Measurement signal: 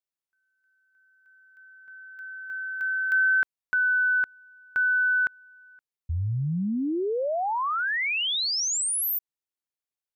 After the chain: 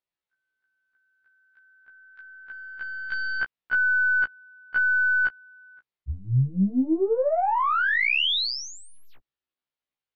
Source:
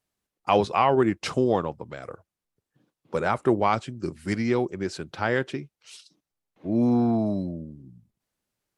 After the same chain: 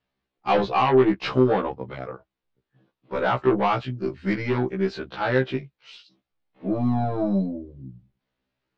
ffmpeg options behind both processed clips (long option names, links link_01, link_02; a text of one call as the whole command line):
ffmpeg -i in.wav -af "aeval=exprs='0.422*(cos(1*acos(clip(val(0)/0.422,-1,1)))-cos(1*PI/2))+0.0944*(cos(5*acos(clip(val(0)/0.422,-1,1)))-cos(5*PI/2))+0.015*(cos(8*acos(clip(val(0)/0.422,-1,1)))-cos(8*PI/2))':channel_layout=same,lowpass=frequency=4100:width=0.5412,lowpass=frequency=4100:width=1.3066,afftfilt=real='re*1.73*eq(mod(b,3),0)':imag='im*1.73*eq(mod(b,3),0)':win_size=2048:overlap=0.75" out.wav